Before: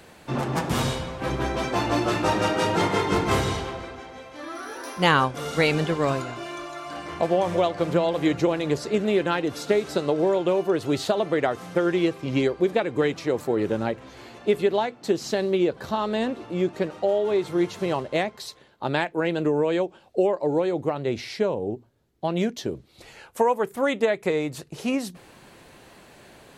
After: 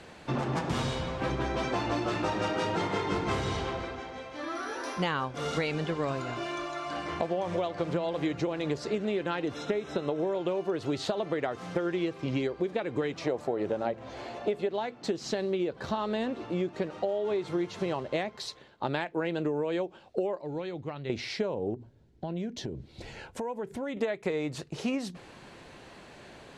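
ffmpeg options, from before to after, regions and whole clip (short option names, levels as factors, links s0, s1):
-filter_complex "[0:a]asettb=1/sr,asplit=3[s0][s1][s2];[s0]atrim=end=9.544[s3];[s1]atrim=start=9.54:end=10.35,asetpts=PTS-STARTPTS,afade=t=in:d=0.004:c=qsin,afade=t=out:st=0.806:d=0.004:c=qsin,asuperstop=centerf=4600:order=20:qfactor=6.1,acrossover=split=4100[s4][s5];[s5]acompressor=threshold=0.00355:ratio=4:attack=1:release=60[s6];[s4][s6]amix=inputs=2:normalize=0[s7];[s2]atrim=start=10.346[s8];[s3][s7]acrossfade=d=0.004:c1=hsin:c2=qsin[s9];[s9][s8]acrossfade=d=0.004:c1=qsin:c2=hsin,asettb=1/sr,asplit=3[s10][s11][s12];[s10]atrim=end=13.214[s13];[s11]atrim=start=13.21:end=14.69,asetpts=PTS-STARTPTS,afade=t=in:d=0.004:c=qsin,afade=t=out:st=1.476:d=0.004:c=qsin,equalizer=f=660:w=1.8:g=9.5,bandreject=f=111:t=h:w=4,bandreject=f=222:t=h:w=4,bandreject=f=333:t=h:w=4[s14];[s12]atrim=start=14.686[s15];[s13][s14]acrossfade=d=0.004:c1=hsin:c2=qsin[s16];[s16][s15]acrossfade=d=0.004:c1=qsin:c2=hsin,asettb=1/sr,asplit=3[s17][s18][s19];[s17]atrim=end=20.414[s20];[s18]atrim=start=20.41:end=21.1,asetpts=PTS-STARTPTS,afade=t=in:d=0.004:c=qsin,afade=t=out:st=0.686:d=0.004:c=qsin,lowpass=4200,equalizer=f=540:w=0.32:g=-13.5[s21];[s19]atrim=start=21.096[s22];[s20][s21]acrossfade=d=0.004:c1=hsin:c2=qsin[s23];[s23][s22]acrossfade=d=0.004:c1=qsin:c2=hsin,asettb=1/sr,asplit=3[s24][s25][s26];[s24]atrim=end=21.744[s27];[s25]atrim=start=21.74:end=23.97,asetpts=PTS-STARTPTS,afade=t=in:d=0.004:c=qsin,afade=t=out:st=2.226:d=0.004:c=qsin,lowshelf=f=340:g=10.5,acompressor=threshold=0.02:ratio=4:attack=3.2:release=140:knee=1:detection=peak,asuperstop=centerf=1200:order=4:qfactor=7.6[s28];[s26]atrim=start=23.966[s29];[s27][s28]acrossfade=d=0.004:c1=hsin:c2=qsin[s30];[s30][s29]acrossfade=d=0.004:c1=qsin:c2=hsin,lowpass=6600,acompressor=threshold=0.0447:ratio=6"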